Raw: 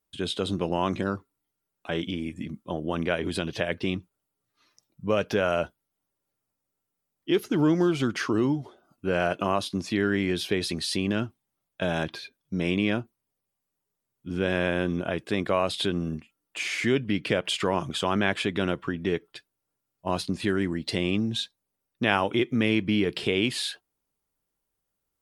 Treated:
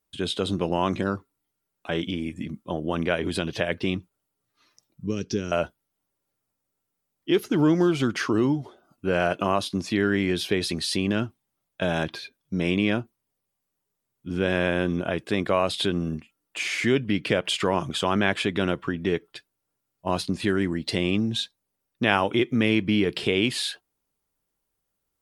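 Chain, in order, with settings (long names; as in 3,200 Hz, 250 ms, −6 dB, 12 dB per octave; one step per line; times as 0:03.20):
0:05.06–0:05.52: drawn EQ curve 390 Hz 0 dB, 600 Hz −24 dB, 3,300 Hz −8 dB, 5,800 Hz +7 dB, 11,000 Hz −17 dB
level +2 dB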